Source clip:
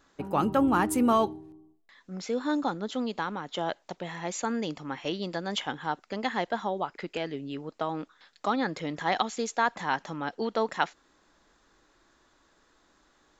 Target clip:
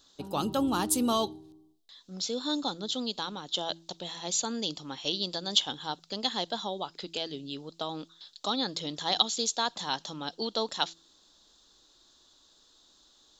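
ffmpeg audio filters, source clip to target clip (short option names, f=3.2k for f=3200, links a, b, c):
-af "highshelf=f=2.8k:t=q:w=3:g=10,bandreject=f=165.7:t=h:w=4,bandreject=f=331.4:t=h:w=4,volume=-4dB"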